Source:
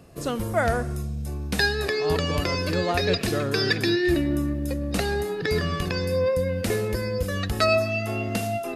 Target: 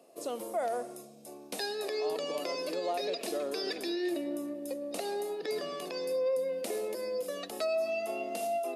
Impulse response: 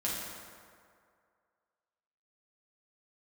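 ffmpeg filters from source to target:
-af "equalizer=frequency=630:width_type=o:width=0.67:gain=8,equalizer=frequency=1600:width_type=o:width=0.67:gain=-9,equalizer=frequency=10000:width_type=o:width=0.67:gain=5,alimiter=limit=-15.5dB:level=0:latency=1:release=67,highpass=frequency=280:width=0.5412,highpass=frequency=280:width=1.3066,volume=-8.5dB"

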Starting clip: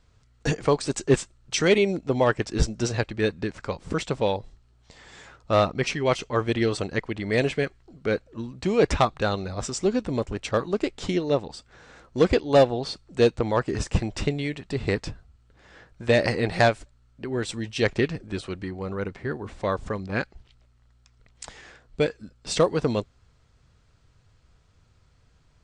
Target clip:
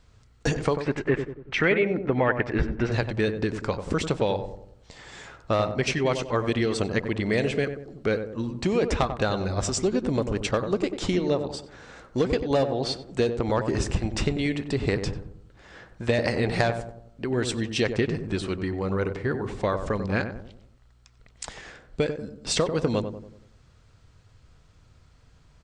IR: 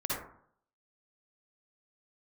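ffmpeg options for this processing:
-filter_complex "[0:a]acompressor=threshold=-24dB:ratio=6,asettb=1/sr,asplit=3[link_01][link_02][link_03];[link_01]atrim=end=0.804[link_04];[link_02]atrim=start=0.8:end=2.92,asetpts=PTS-STARTPTS,afade=type=in:duration=0.004:curve=qsin,afade=type=out:start_time=2.116:duration=0.004:curve=qsin,lowpass=frequency=2000:width_type=q:width=2.6[link_05];[link_03]atrim=start=2.916[link_06];[link_04][link_05]acrossfade=duration=0.004:curve1=hsin:curve2=qsin[link_07];[link_07][link_06]acrossfade=duration=0.004:curve1=qsin:curve2=hsin,asplit=2[link_08][link_09];[link_09]adelay=94,lowpass=frequency=970:poles=1,volume=-7dB,asplit=2[link_10][link_11];[link_11]adelay=94,lowpass=frequency=970:poles=1,volume=0.5,asplit=2[link_12][link_13];[link_13]adelay=94,lowpass=frequency=970:poles=1,volume=0.5,asplit=2[link_14][link_15];[link_15]adelay=94,lowpass=frequency=970:poles=1,volume=0.5,asplit=2[link_16][link_17];[link_17]adelay=94,lowpass=frequency=970:poles=1,volume=0.5,asplit=2[link_18][link_19];[link_19]adelay=94,lowpass=frequency=970:poles=1,volume=0.5[link_20];[link_08][link_10][link_12][link_14][link_16][link_18][link_20]amix=inputs=7:normalize=0,volume=3.5dB"

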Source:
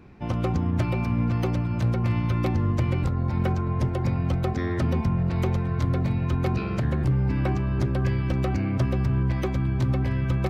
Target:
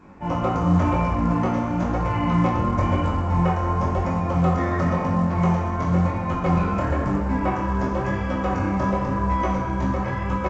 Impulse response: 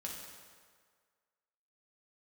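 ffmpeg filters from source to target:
-filter_complex "[0:a]asettb=1/sr,asplit=3[link_01][link_02][link_03];[link_01]atrim=end=3.974[link_04];[link_02]atrim=start=3.97:end=6.3,asetpts=PTS-STARTPTS,afade=type=in:duration=0.004:curve=qsin,afade=type=out:start_time=2.326:duration=0.004:curve=qsin,highpass=84[link_05];[link_03]atrim=start=6.296[link_06];[link_04][link_05]acrossfade=duration=0.004:curve1=hsin:curve2=qsin[link_07];[link_07][link_06]acrossfade=duration=0.004:curve1=qsin:curve2=hsin,asplit=3[link_08][link_09][link_10];[link_09]adelay=204,afreqshift=-41,volume=-21.5dB[link_11];[link_10]adelay=408,afreqshift=-82,volume=-31.1dB[link_12];[link_08][link_11][link_12]amix=inputs=3:normalize=0[link_13];[1:a]atrim=start_sample=2205[link_14];[link_13][link_14]afir=irnorm=-1:irlink=0,acontrast=33,equalizer=frequency=125:width_type=o:width=1:gain=-8,equalizer=frequency=1000:width_type=o:width=1:gain=8,equalizer=frequency=4000:width_type=o:width=1:gain=-11,flanger=delay=19:depth=7.1:speed=0.96,volume=4dB" -ar 16000 -c:a pcm_alaw

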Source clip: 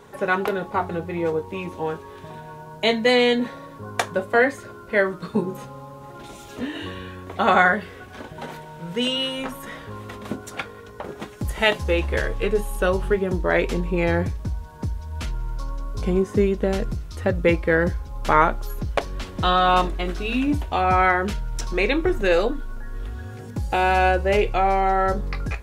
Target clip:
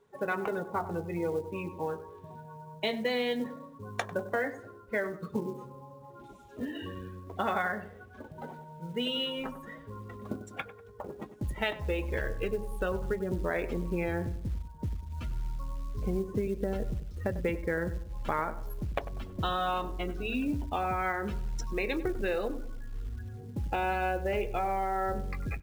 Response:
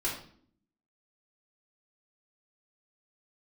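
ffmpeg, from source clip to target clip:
-filter_complex "[0:a]afftdn=noise_reduction=16:noise_floor=-32,acompressor=threshold=-21dB:ratio=5,asplit=2[link_01][link_02];[link_02]adelay=97,lowpass=frequency=1300:poles=1,volume=-12.5dB,asplit=2[link_03][link_04];[link_04]adelay=97,lowpass=frequency=1300:poles=1,volume=0.46,asplit=2[link_05][link_06];[link_06]adelay=97,lowpass=frequency=1300:poles=1,volume=0.46,asplit=2[link_07][link_08];[link_08]adelay=97,lowpass=frequency=1300:poles=1,volume=0.46,asplit=2[link_09][link_10];[link_10]adelay=97,lowpass=frequency=1300:poles=1,volume=0.46[link_11];[link_03][link_05][link_07][link_09][link_11]amix=inputs=5:normalize=0[link_12];[link_01][link_12]amix=inputs=2:normalize=0,acrusher=bits=7:mode=log:mix=0:aa=0.000001,volume=-6.5dB"

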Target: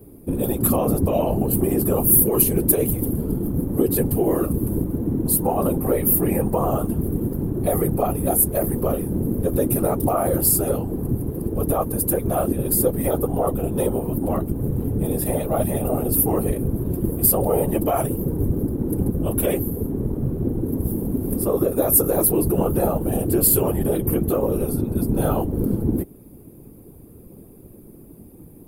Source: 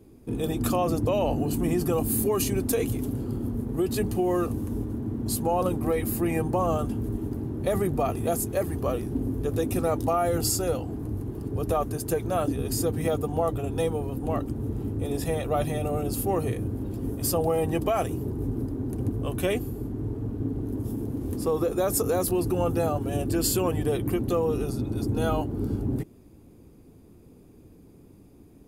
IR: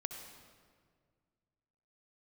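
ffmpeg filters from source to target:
-filter_complex "[0:a]flanger=delay=2.8:depth=4.9:regen=-75:speed=1.8:shape=sinusoidal,asplit=2[link_01][link_02];[link_02]alimiter=level_in=2dB:limit=-24dB:level=0:latency=1:release=332,volume=-2dB,volume=-1.5dB[link_03];[link_01][link_03]amix=inputs=2:normalize=0,tiltshelf=frequency=1200:gain=5,acrossover=split=1200[link_04][link_05];[link_05]aexciter=amount=11.1:drive=3.8:freq=9200[link_06];[link_04][link_06]amix=inputs=2:normalize=0,afftfilt=real='hypot(re,im)*cos(2*PI*random(0))':imag='hypot(re,im)*sin(2*PI*random(1))':win_size=512:overlap=0.75,volume=8dB"

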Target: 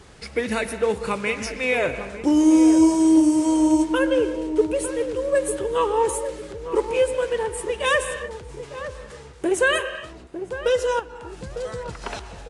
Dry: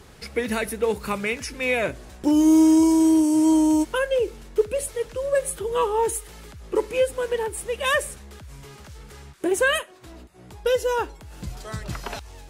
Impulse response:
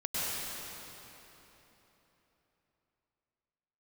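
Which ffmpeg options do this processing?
-filter_complex "[0:a]asplit=2[link_01][link_02];[link_02]highpass=220,lowpass=3900[link_03];[1:a]atrim=start_sample=2205,afade=type=out:start_time=0.37:duration=0.01,atrim=end_sample=16758[link_04];[link_03][link_04]afir=irnorm=-1:irlink=0,volume=-14.5dB[link_05];[link_01][link_05]amix=inputs=2:normalize=0,asettb=1/sr,asplit=3[link_06][link_07][link_08];[link_06]atrim=end=10.994[link_09];[link_07]atrim=start=10.99:end=12.02,asetpts=PTS-STARTPTS,afade=type=in:duration=0.004:curve=qsin,afade=type=out:start_time=1.026:duration=0.004:curve=qsin,acompressor=threshold=-32dB:ratio=12[link_10];[link_08]atrim=start=12.016[link_11];[link_09][link_10]acrossfade=duration=0.004:curve1=hsin:curve2=qsin[link_12];[link_12][link_11]acrossfade=duration=0.004:curve1=qsin:curve2=hsin,asplit=2[link_13][link_14];[link_14]adelay=902,lowpass=frequency=840:poles=1,volume=-9dB,asplit=2[link_15][link_16];[link_16]adelay=902,lowpass=frequency=840:poles=1,volume=0.39,asplit=2[link_17][link_18];[link_18]adelay=902,lowpass=frequency=840:poles=1,volume=0.39,asplit=2[link_19][link_20];[link_20]adelay=902,lowpass=frequency=840:poles=1,volume=0.39[link_21];[link_13][link_15][link_17][link_19][link_21]amix=inputs=5:normalize=0" -ar 22050 -c:a libvorbis -b:a 48k

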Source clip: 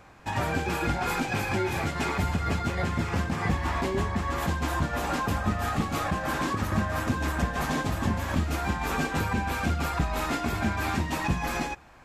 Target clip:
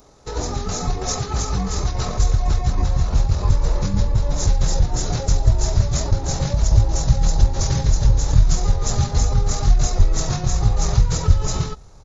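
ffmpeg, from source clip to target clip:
ffmpeg -i in.wav -af "asetrate=22696,aresample=44100,atempo=1.94306,aexciter=amount=9.4:drive=4.7:freq=4500,asubboost=boost=5:cutoff=140,volume=2dB" out.wav

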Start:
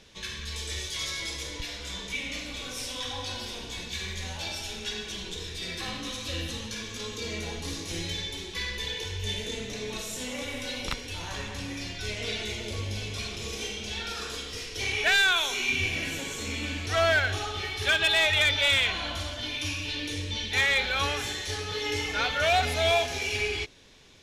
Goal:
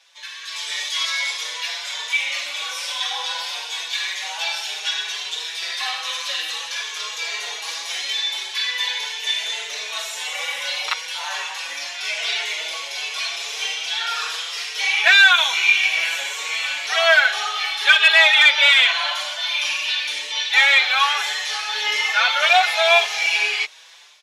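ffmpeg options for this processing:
ffmpeg -i in.wav -filter_complex "[0:a]acrossover=split=5000[link_01][link_02];[link_02]acompressor=threshold=-47dB:ratio=4:attack=1:release=60[link_03];[link_01][link_03]amix=inputs=2:normalize=0,highpass=frequency=750:width=0.5412,highpass=frequency=750:width=1.3066,dynaudnorm=framelen=320:gausssize=3:maxgain=10.5dB,asplit=2[link_04][link_05];[link_05]adelay=5.6,afreqshift=1.8[link_06];[link_04][link_06]amix=inputs=2:normalize=1,volume=4dB" out.wav

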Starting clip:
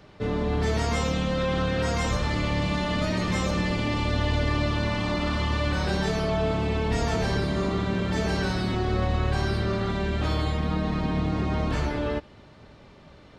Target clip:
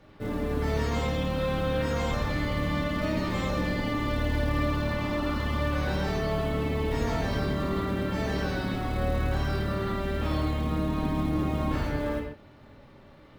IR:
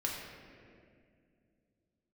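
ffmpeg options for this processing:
-filter_complex "[0:a]aemphasis=mode=reproduction:type=cd,acrusher=bits=7:mode=log:mix=0:aa=0.000001[link_01];[1:a]atrim=start_sample=2205,afade=type=out:start_time=0.2:duration=0.01,atrim=end_sample=9261,asetrate=41454,aresample=44100[link_02];[link_01][link_02]afir=irnorm=-1:irlink=0,volume=-5dB"

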